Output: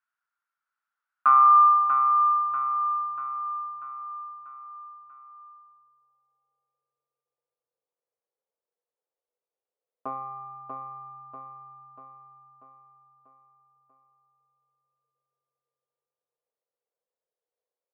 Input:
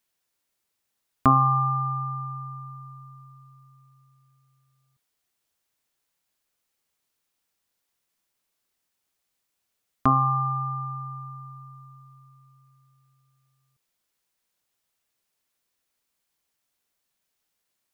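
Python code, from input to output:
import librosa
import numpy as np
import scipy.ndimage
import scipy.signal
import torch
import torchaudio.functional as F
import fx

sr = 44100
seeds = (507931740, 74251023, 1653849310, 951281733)

y = fx.tube_stage(x, sr, drive_db=9.0, bias=0.4)
y = fx.peak_eq(y, sr, hz=920.0, db=10.5, octaves=2.1)
y = fx.filter_sweep_bandpass(y, sr, from_hz=1400.0, to_hz=480.0, start_s=1.2, end_s=4.1, q=7.8)
y = fx.high_shelf(y, sr, hz=2000.0, db=8.5)
y = fx.echo_feedback(y, sr, ms=640, feedback_pct=52, wet_db=-6.0)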